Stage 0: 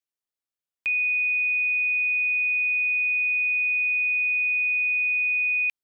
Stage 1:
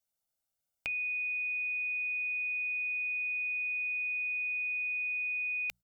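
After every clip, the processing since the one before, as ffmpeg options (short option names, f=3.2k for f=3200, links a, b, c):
-af "equalizer=f=2.2k:t=o:w=2:g=-9.5,bandreject=f=60:t=h:w=6,bandreject=f=120:t=h:w=6,bandreject=f=180:t=h:w=6,aecho=1:1:1.4:0.73,volume=5.5dB"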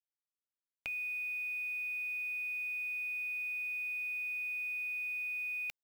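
-af "acrusher=bits=8:mix=0:aa=0.000001,volume=-4dB"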